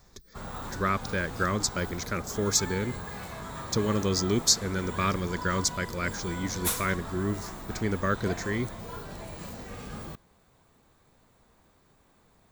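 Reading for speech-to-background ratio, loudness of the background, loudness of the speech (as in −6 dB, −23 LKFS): 9.0 dB, −38.0 LKFS, −29.0 LKFS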